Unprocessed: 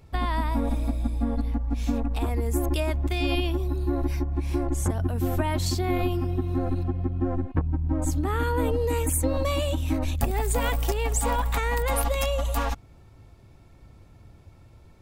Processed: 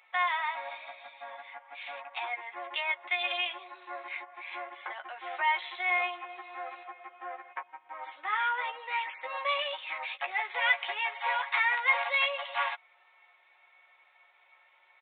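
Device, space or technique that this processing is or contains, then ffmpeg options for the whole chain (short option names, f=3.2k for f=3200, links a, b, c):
musical greeting card: -filter_complex "[0:a]highpass=f=840:p=1,aecho=1:1:5.5:0.49,asplit=2[a][b];[b]adelay=14,volume=-5dB[c];[a][c]amix=inputs=2:normalize=0,aresample=8000,aresample=44100,highpass=f=710:w=0.5412,highpass=f=710:w=1.3066,equalizer=f=2.1k:t=o:w=0.37:g=10"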